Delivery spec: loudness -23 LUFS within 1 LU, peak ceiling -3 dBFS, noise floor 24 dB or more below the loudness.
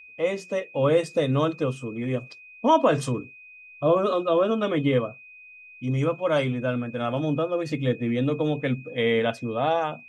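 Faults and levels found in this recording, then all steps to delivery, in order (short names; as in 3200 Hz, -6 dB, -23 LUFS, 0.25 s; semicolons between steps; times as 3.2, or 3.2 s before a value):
steady tone 2500 Hz; tone level -45 dBFS; loudness -25.0 LUFS; peak -8.0 dBFS; loudness target -23.0 LUFS
-> notch 2500 Hz, Q 30; gain +2 dB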